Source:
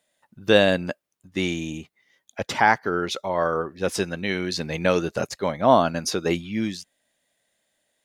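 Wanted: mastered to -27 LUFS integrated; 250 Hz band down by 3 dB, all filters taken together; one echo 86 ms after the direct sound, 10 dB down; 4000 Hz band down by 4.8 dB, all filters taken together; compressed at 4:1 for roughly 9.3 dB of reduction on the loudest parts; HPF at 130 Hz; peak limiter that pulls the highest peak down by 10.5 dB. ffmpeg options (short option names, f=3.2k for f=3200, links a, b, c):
-af "highpass=130,equalizer=f=250:t=o:g=-3.5,equalizer=f=4k:t=o:g=-6,acompressor=threshold=-23dB:ratio=4,alimiter=limit=-20dB:level=0:latency=1,aecho=1:1:86:0.316,volume=5.5dB"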